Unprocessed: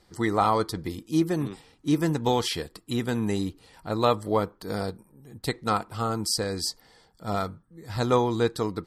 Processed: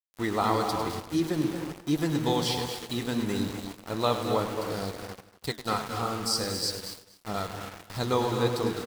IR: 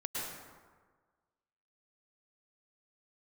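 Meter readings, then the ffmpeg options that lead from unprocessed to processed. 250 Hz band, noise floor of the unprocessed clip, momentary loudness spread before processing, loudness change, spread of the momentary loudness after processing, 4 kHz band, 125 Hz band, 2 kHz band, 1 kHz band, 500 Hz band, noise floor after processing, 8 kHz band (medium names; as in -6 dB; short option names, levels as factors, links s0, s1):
-2.0 dB, -61 dBFS, 12 LU, -2.0 dB, 11 LU, +1.0 dB, -2.5 dB, -1.0 dB, -2.5 dB, -2.5 dB, -57 dBFS, -1.0 dB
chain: -filter_complex "[0:a]asplit=2[s0][s1];[1:a]atrim=start_sample=2205,afade=t=out:st=0.42:d=0.01,atrim=end_sample=18963,adelay=101[s2];[s1][s2]afir=irnorm=-1:irlink=0,volume=0.447[s3];[s0][s3]amix=inputs=2:normalize=0,adynamicequalizer=threshold=0.00562:dfrequency=4200:dqfactor=1.3:tfrequency=4200:tqfactor=1.3:attack=5:release=100:ratio=0.375:range=2.5:mode=boostabove:tftype=bell,aeval=exprs='val(0)*gte(abs(val(0)),0.0282)':c=same,aecho=1:1:239:0.15,flanger=delay=4.8:depth=9.8:regen=-69:speed=1.5:shape=triangular"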